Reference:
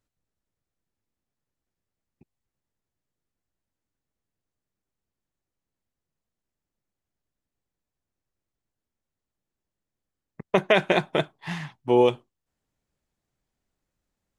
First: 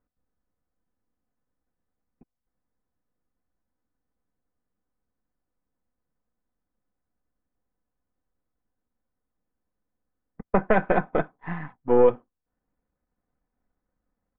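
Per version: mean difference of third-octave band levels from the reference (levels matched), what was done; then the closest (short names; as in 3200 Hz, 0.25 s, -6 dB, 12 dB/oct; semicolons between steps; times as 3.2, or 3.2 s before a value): 5.5 dB: half-wave gain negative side -7 dB; LPF 1700 Hz 24 dB/oct; comb 4 ms, depth 45%; gain +3.5 dB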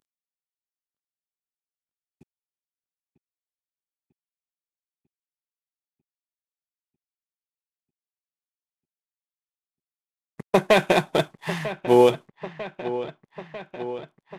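4.5 dB: CVSD 64 kbps; low shelf 67 Hz -7.5 dB; dark delay 0.946 s, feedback 68%, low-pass 3400 Hz, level -13.5 dB; gain +3.5 dB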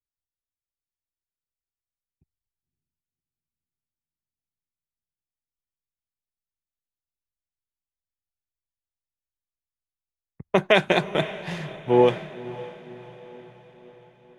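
3.5 dB: in parallel at -0.5 dB: compressor, threshold -32 dBFS, peak gain reduction 17 dB; on the sum: diffused feedback echo 0.559 s, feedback 70%, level -10 dB; three-band expander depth 70%; gain -3 dB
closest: third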